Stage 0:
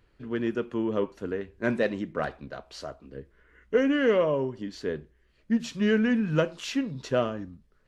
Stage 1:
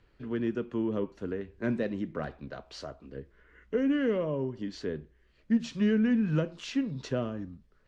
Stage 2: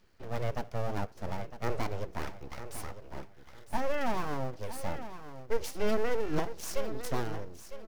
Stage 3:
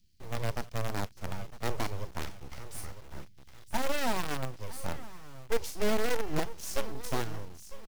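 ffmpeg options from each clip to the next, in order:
ffmpeg -i in.wav -filter_complex "[0:a]lowpass=6900,acrossover=split=340[link_01][link_02];[link_02]acompressor=threshold=-41dB:ratio=2[link_03];[link_01][link_03]amix=inputs=2:normalize=0" out.wav
ffmpeg -i in.wav -af "aeval=exprs='abs(val(0))':channel_layout=same,aexciter=amount=2.9:drive=1.5:freq=4800,aecho=1:1:955|1910|2865:0.251|0.0628|0.0157" out.wav
ffmpeg -i in.wav -filter_complex "[0:a]acrossover=split=240|3000[link_01][link_02][link_03];[link_02]acrusher=bits=6:dc=4:mix=0:aa=0.000001[link_04];[link_03]asplit=2[link_05][link_06];[link_06]adelay=39,volume=-5dB[link_07];[link_05][link_07]amix=inputs=2:normalize=0[link_08];[link_01][link_04][link_08]amix=inputs=3:normalize=0" out.wav

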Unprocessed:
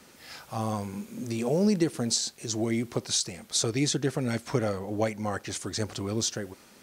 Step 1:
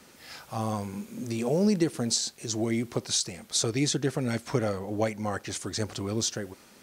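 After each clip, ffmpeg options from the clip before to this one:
ffmpeg -i in.wav -af anull out.wav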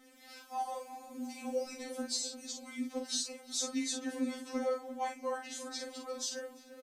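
ffmpeg -i in.wav -filter_complex "[0:a]asplit=2[link_01][link_02];[link_02]adelay=45,volume=-5.5dB[link_03];[link_01][link_03]amix=inputs=2:normalize=0,asplit=2[link_04][link_05];[link_05]adelay=346,lowpass=frequency=1100:poles=1,volume=-10.5dB,asplit=2[link_06][link_07];[link_07]adelay=346,lowpass=frequency=1100:poles=1,volume=0.54,asplit=2[link_08][link_09];[link_09]adelay=346,lowpass=frequency=1100:poles=1,volume=0.54,asplit=2[link_10][link_11];[link_11]adelay=346,lowpass=frequency=1100:poles=1,volume=0.54,asplit=2[link_12][link_13];[link_13]adelay=346,lowpass=frequency=1100:poles=1,volume=0.54,asplit=2[link_14][link_15];[link_15]adelay=346,lowpass=frequency=1100:poles=1,volume=0.54[link_16];[link_04][link_06][link_08][link_10][link_12][link_14][link_16]amix=inputs=7:normalize=0,afftfilt=real='re*3.46*eq(mod(b,12),0)':imag='im*3.46*eq(mod(b,12),0)':win_size=2048:overlap=0.75,volume=-6.5dB" out.wav

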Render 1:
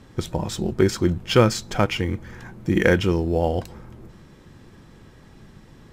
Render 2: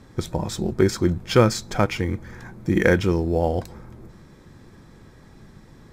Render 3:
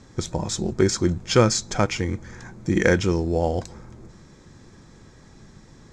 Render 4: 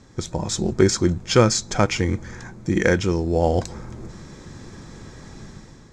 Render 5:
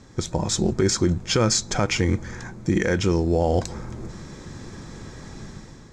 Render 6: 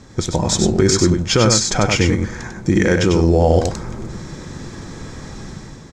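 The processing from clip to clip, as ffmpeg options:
ffmpeg -i in.wav -af "equalizer=frequency=2900:width=5.9:gain=-9" out.wav
ffmpeg -i in.wav -af "lowpass=frequency=6800:width_type=q:width=2.8,volume=-1dB" out.wav
ffmpeg -i in.wav -af "dynaudnorm=framelen=140:gausssize=7:maxgain=9.5dB,volume=-1dB" out.wav
ffmpeg -i in.wav -af "alimiter=limit=-12dB:level=0:latency=1:release=67,volume=1.5dB" out.wav
ffmpeg -i in.wav -af "aecho=1:1:97:0.562,volume=5.5dB" out.wav

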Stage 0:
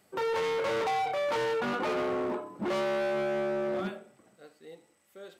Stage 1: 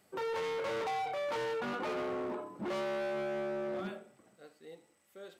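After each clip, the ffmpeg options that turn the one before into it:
ffmpeg -i in.wav -af "alimiter=level_in=6dB:limit=-24dB:level=0:latency=1:release=28,volume=-6dB,volume=-2.5dB" out.wav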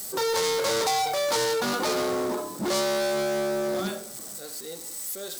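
ffmpeg -i in.wav -af "aeval=exprs='val(0)+0.5*0.00178*sgn(val(0))':channel_layout=same,aexciter=amount=3.2:drive=9.2:freq=3900,volume=9dB" out.wav

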